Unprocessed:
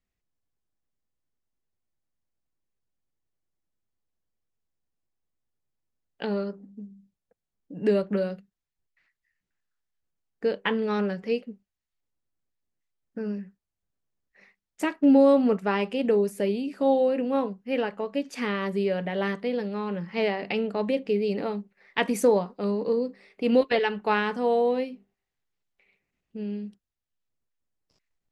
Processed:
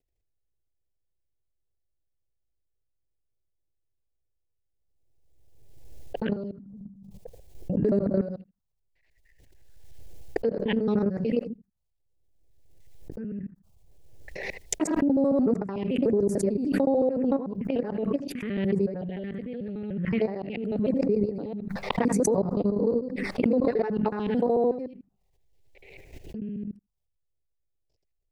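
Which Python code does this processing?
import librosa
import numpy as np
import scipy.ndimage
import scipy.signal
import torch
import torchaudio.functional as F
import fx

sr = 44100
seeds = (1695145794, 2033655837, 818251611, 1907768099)

y = fx.local_reverse(x, sr, ms=74.0)
y = fx.tilt_shelf(y, sr, db=6.0, hz=640.0)
y = fx.level_steps(y, sr, step_db=11)
y = fx.env_phaser(y, sr, low_hz=210.0, high_hz=3100.0, full_db=-25.0)
y = y + 10.0 ** (-23.5 / 20.0) * np.pad(y, (int(81 * sr / 1000.0), 0))[:len(y)]
y = fx.pre_swell(y, sr, db_per_s=32.0)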